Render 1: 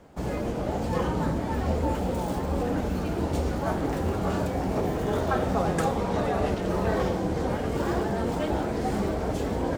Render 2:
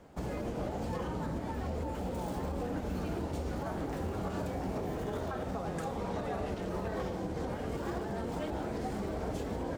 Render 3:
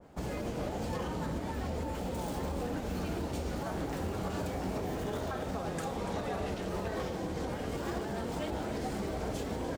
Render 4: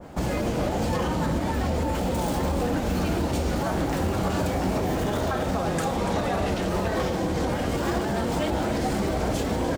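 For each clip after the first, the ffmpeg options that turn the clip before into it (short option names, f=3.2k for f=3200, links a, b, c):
-af "alimiter=limit=-23.5dB:level=0:latency=1:release=232,volume=-3.5dB"
-af "aecho=1:1:288:0.266,adynamicequalizer=threshold=0.00178:dfrequency=1900:dqfactor=0.7:tfrequency=1900:tqfactor=0.7:attack=5:release=100:ratio=0.375:range=2.5:mode=boostabove:tftype=highshelf"
-filter_complex "[0:a]bandreject=f=430:w=12,asplit=2[a][b];[b]alimiter=level_in=12dB:limit=-24dB:level=0:latency=1,volume=-12dB,volume=0dB[c];[a][c]amix=inputs=2:normalize=0,volume=7.5dB"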